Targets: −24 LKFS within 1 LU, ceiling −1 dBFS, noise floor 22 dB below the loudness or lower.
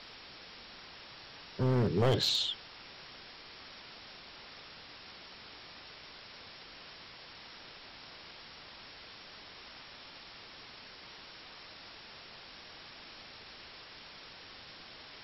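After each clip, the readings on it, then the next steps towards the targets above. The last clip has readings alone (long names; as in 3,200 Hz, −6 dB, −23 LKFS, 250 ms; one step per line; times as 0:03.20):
share of clipped samples 0.3%; peaks flattened at −22.5 dBFS; background noise floor −52 dBFS; target noise floor −62 dBFS; integrated loudness −40.0 LKFS; sample peak −22.5 dBFS; target loudness −24.0 LKFS
→ clipped peaks rebuilt −22.5 dBFS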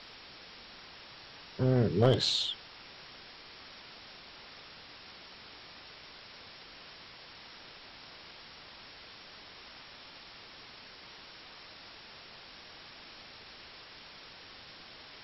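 share of clipped samples 0.0%; background noise floor −52 dBFS; target noise floor −53 dBFS
→ broadband denoise 6 dB, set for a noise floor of −52 dBFS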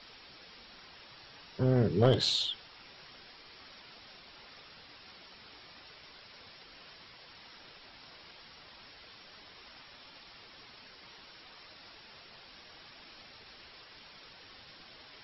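background noise floor −55 dBFS; integrated loudness −28.5 LKFS; sample peak −13.5 dBFS; target loudness −24.0 LKFS
→ level +4.5 dB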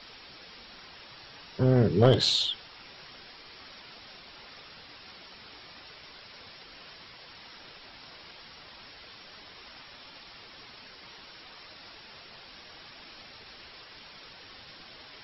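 integrated loudness −24.0 LKFS; sample peak −9.0 dBFS; background noise floor −50 dBFS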